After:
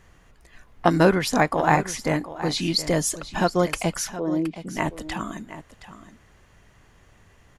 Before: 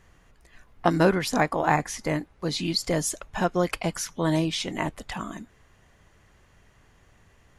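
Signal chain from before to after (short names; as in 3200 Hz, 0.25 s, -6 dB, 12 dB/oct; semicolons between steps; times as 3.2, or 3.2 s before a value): 4.16–4.75 band-pass 470 Hz -> 170 Hz, Q 2.2; on a send: echo 0.72 s -14 dB; on the sum: gain +3 dB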